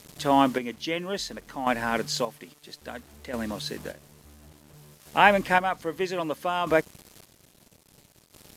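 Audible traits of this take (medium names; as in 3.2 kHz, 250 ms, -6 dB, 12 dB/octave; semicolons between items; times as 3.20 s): a quantiser's noise floor 8-bit, dither none; chopped level 0.6 Hz, depth 60%, duty 35%; Vorbis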